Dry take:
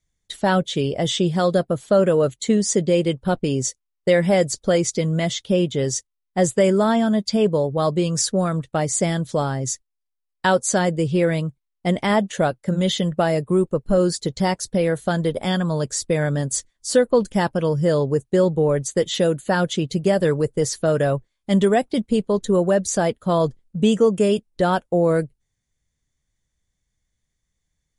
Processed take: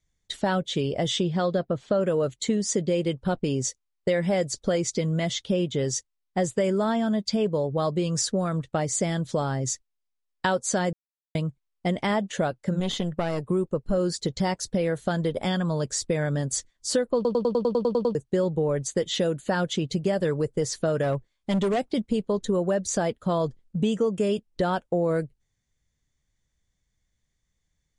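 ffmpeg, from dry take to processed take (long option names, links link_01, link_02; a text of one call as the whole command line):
ffmpeg -i in.wav -filter_complex "[0:a]asettb=1/sr,asplit=3[link_01][link_02][link_03];[link_01]atrim=end=1.234[link_04];[link_02]atrim=start=1.23:end=2.01,asetpts=PTS-STARTPTS,afade=type=in:duration=0.004:curve=qsin,afade=type=out:start_time=0.776:duration=0.004:curve=qsin,lowpass=4800[link_05];[link_03]atrim=start=2.006[link_06];[link_04][link_05]acrossfade=duration=0.004:curve1=hsin:curve2=qsin[link_07];[link_07][link_06]acrossfade=duration=0.004:curve1=qsin:curve2=hsin,asettb=1/sr,asplit=3[link_08][link_09][link_10];[link_08]atrim=end=12.804[link_11];[link_09]atrim=start=12.8:end=13.44,asetpts=PTS-STARTPTS,afade=type=in:duration=0.004:curve=qsin,afade=type=out:start_time=0.636:duration=0.004:curve=qsin,aeval=exprs='(tanh(5.01*val(0)+0.7)-tanh(0.7))/5.01':channel_layout=same[link_12];[link_10]atrim=start=13.436[link_13];[link_11][link_12]acrossfade=duration=0.004:curve1=hsin:curve2=qsin[link_14];[link_14][link_13]acrossfade=duration=0.004:curve1=qsin:curve2=hsin,asplit=3[link_15][link_16][link_17];[link_15]afade=type=out:start_time=21.02:duration=0.02[link_18];[link_16]volume=15.5dB,asoftclip=hard,volume=-15.5dB,afade=type=in:start_time=21.02:duration=0.02,afade=type=out:start_time=21.91:duration=0.02[link_19];[link_17]afade=type=in:start_time=21.91:duration=0.02[link_20];[link_18][link_19][link_20]amix=inputs=3:normalize=0,asplit=13[link_21][link_22][link_23][link_24][link_25][link_26][link_27][link_28][link_29][link_30][link_31][link_32][link_33];[link_21]atrim=end=10.93,asetpts=PTS-STARTPTS,afade=type=out:start_time=10.926:duration=0.004:curve=hsin[link_34];[link_22]atrim=start=10.93:end=11.35,asetpts=PTS-STARTPTS,volume=0[link_35];[link_23]atrim=start=11.35:end=17.252,asetpts=PTS-STARTPTS,afade=type=in:duration=0.004:curve=hsin[link_36];[link_24]atrim=start=17.148:end=17.252[link_37];[link_25]atrim=start=17.148:end=17.252[link_38];[link_26]atrim=start=17.148:end=17.252[link_39];[link_27]atrim=start=17.148:end=17.252[link_40];[link_28]atrim=start=17.148:end=17.252[link_41];[link_29]atrim=start=17.148:end=17.252[link_42];[link_30]atrim=start=17.148:end=17.252[link_43];[link_31]atrim=start=17.148:end=17.252[link_44];[link_32]atrim=start=17.148:end=17.252[link_45];[link_33]atrim=start=18.148[link_46];[link_34][link_35][link_36]concat=n=3:v=0:a=1[link_47];[link_47][link_37]acrossfade=duration=0.004:curve1=hsin:curve2=hsin[link_48];[link_48][link_38]acrossfade=duration=0.004:curve1=hsin:curve2=hsin[link_49];[link_49][link_39]acrossfade=duration=0.004:curve1=hsin:curve2=hsin[link_50];[link_50][link_40]acrossfade=duration=0.004:curve1=hsin:curve2=hsin[link_51];[link_51][link_41]acrossfade=duration=0.004:curve1=hsin:curve2=hsin[link_52];[link_52][link_42]acrossfade=duration=0.004:curve1=hsin:curve2=hsin[link_53];[link_53][link_43]acrossfade=duration=0.004:curve1=hsin:curve2=hsin[link_54];[link_54][link_44]acrossfade=duration=0.004:curve1=hsin:curve2=hsin[link_55];[link_55][link_45]acrossfade=duration=0.004:curve1=hsin:curve2=hsin[link_56];[link_56][link_46]acrossfade=duration=0.004:curve1=hsin:curve2=hsin,lowpass=8000,acompressor=threshold=-24dB:ratio=2.5" out.wav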